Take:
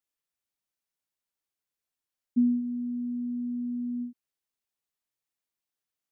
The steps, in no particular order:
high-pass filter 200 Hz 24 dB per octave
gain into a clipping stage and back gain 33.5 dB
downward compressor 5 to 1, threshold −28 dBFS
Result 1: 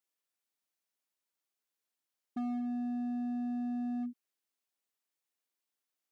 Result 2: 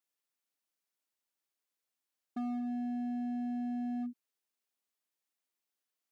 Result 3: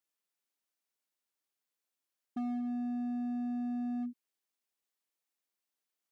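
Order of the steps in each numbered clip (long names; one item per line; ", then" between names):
high-pass filter, then downward compressor, then gain into a clipping stage and back
downward compressor, then gain into a clipping stage and back, then high-pass filter
downward compressor, then high-pass filter, then gain into a clipping stage and back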